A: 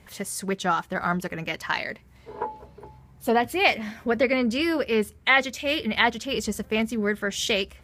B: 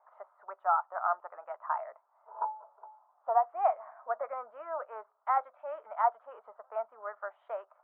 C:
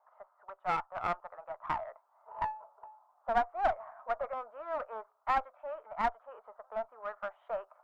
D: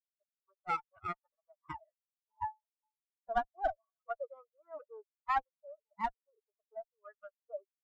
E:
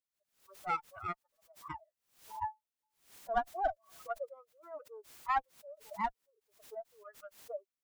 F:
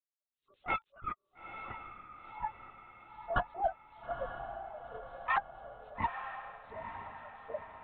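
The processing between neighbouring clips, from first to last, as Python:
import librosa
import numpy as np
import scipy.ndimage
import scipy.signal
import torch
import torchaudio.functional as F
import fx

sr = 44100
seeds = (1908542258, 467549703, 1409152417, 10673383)

y1 = scipy.signal.sosfilt(scipy.signal.ellip(3, 1.0, 70, [640.0, 1300.0], 'bandpass', fs=sr, output='sos'), x)
y1 = F.gain(torch.from_numpy(y1), -1.0).numpy()
y2 = fx.diode_clip(y1, sr, knee_db=-30.0)
y2 = fx.rider(y2, sr, range_db=4, speed_s=2.0)
y3 = fx.bin_expand(y2, sr, power=3.0)
y3 = fx.am_noise(y3, sr, seeds[0], hz=5.7, depth_pct=55)
y3 = F.gain(torch.from_numpy(y3), 4.5).numpy()
y4 = fx.pre_swell(y3, sr, db_per_s=130.0)
y5 = fx.bin_expand(y4, sr, power=1.5)
y5 = fx.lpc_vocoder(y5, sr, seeds[1], excitation='whisper', order=16)
y5 = fx.echo_diffused(y5, sr, ms=910, feedback_pct=52, wet_db=-8.0)
y5 = F.gain(torch.from_numpy(y5), 2.0).numpy()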